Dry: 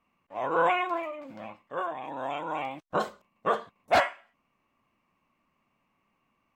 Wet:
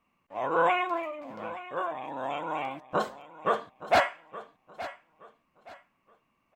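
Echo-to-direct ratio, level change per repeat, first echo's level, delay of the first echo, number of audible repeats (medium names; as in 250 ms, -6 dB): -15.0 dB, -11.0 dB, -15.5 dB, 871 ms, 2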